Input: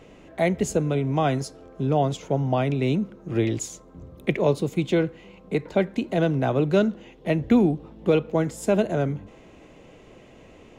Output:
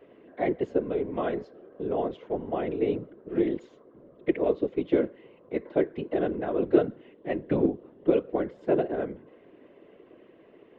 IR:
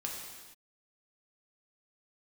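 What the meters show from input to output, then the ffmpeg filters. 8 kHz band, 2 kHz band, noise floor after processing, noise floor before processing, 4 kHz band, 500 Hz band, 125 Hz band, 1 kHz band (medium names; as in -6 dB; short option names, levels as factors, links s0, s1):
under -35 dB, -8.0 dB, -56 dBFS, -50 dBFS, under -10 dB, -2.5 dB, -15.0 dB, -6.5 dB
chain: -af "highpass=340,equalizer=f=370:t=q:w=4:g=9,equalizer=f=800:t=q:w=4:g=-10,equalizer=f=1300:t=q:w=4:g=-5,equalizer=f=2400:t=q:w=4:g=-9,lowpass=f=2700:w=0.5412,lowpass=f=2700:w=1.3066,afftfilt=real='hypot(re,im)*cos(2*PI*random(0))':imag='hypot(re,im)*sin(2*PI*random(1))':win_size=512:overlap=0.75,volume=1.33"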